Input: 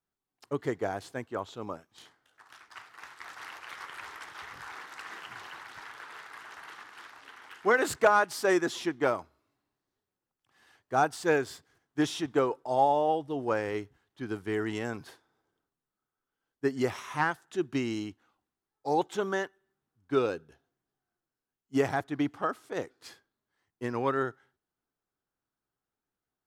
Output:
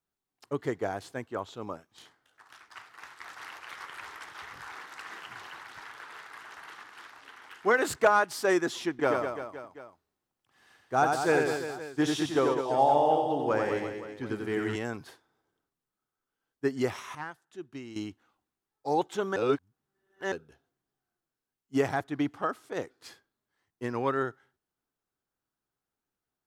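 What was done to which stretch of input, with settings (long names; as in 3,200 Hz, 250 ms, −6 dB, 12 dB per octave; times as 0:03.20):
0:08.90–0:14.76: reverse bouncing-ball delay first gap 90 ms, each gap 1.25×, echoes 5
0:17.15–0:17.96: clip gain −11.5 dB
0:19.36–0:20.32: reverse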